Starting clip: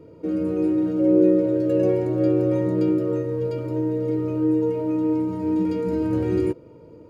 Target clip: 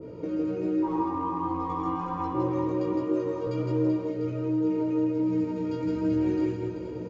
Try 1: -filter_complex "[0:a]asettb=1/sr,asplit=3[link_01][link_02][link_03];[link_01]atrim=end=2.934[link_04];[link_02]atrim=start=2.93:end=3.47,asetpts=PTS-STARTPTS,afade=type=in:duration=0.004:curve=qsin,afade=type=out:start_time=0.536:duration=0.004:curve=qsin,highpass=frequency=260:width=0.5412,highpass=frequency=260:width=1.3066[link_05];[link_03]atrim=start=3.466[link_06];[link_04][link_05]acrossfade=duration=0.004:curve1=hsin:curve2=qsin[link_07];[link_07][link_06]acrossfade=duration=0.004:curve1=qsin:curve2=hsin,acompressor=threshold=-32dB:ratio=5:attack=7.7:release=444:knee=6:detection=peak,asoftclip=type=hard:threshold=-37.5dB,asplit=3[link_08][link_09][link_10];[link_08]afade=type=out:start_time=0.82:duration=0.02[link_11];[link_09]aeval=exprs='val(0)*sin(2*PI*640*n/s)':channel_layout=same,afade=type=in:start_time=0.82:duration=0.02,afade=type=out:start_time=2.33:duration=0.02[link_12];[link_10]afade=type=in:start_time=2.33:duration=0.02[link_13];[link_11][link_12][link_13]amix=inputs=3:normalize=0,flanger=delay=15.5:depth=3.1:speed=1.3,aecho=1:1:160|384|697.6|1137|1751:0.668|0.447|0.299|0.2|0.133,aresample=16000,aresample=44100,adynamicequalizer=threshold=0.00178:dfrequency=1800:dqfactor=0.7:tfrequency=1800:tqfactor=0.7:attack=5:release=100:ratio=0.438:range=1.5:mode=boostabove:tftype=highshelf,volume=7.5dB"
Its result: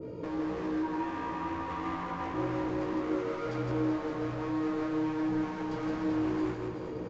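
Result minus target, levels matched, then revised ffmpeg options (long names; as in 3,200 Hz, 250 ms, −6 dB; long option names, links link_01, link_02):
hard clipping: distortion +38 dB
-filter_complex "[0:a]asettb=1/sr,asplit=3[link_01][link_02][link_03];[link_01]atrim=end=2.934[link_04];[link_02]atrim=start=2.93:end=3.47,asetpts=PTS-STARTPTS,afade=type=in:duration=0.004:curve=qsin,afade=type=out:start_time=0.536:duration=0.004:curve=qsin,highpass=frequency=260:width=0.5412,highpass=frequency=260:width=1.3066[link_05];[link_03]atrim=start=3.466[link_06];[link_04][link_05]acrossfade=duration=0.004:curve1=hsin:curve2=qsin[link_07];[link_07][link_06]acrossfade=duration=0.004:curve1=qsin:curve2=hsin,acompressor=threshold=-32dB:ratio=5:attack=7.7:release=444:knee=6:detection=peak,asoftclip=type=hard:threshold=-25.5dB,asplit=3[link_08][link_09][link_10];[link_08]afade=type=out:start_time=0.82:duration=0.02[link_11];[link_09]aeval=exprs='val(0)*sin(2*PI*640*n/s)':channel_layout=same,afade=type=in:start_time=0.82:duration=0.02,afade=type=out:start_time=2.33:duration=0.02[link_12];[link_10]afade=type=in:start_time=2.33:duration=0.02[link_13];[link_11][link_12][link_13]amix=inputs=3:normalize=0,flanger=delay=15.5:depth=3.1:speed=1.3,aecho=1:1:160|384|697.6|1137|1751:0.668|0.447|0.299|0.2|0.133,aresample=16000,aresample=44100,adynamicequalizer=threshold=0.00178:dfrequency=1800:dqfactor=0.7:tfrequency=1800:tqfactor=0.7:attack=5:release=100:ratio=0.438:range=1.5:mode=boostabove:tftype=highshelf,volume=7.5dB"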